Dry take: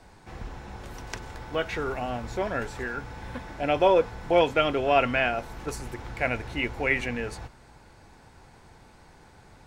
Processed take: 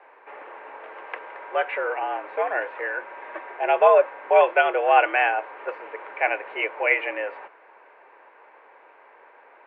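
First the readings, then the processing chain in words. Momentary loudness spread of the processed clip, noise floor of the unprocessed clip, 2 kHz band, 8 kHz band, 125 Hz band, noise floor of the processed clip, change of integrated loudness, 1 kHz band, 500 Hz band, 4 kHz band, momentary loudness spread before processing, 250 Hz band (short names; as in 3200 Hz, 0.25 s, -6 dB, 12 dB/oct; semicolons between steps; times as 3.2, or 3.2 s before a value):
20 LU, -54 dBFS, +5.0 dB, under -30 dB, under -40 dB, -53 dBFS, +4.5 dB, +6.5 dB, +4.0 dB, -4.0 dB, 19 LU, -10.0 dB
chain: mistuned SSB +82 Hz 350–2500 Hz; gain +5 dB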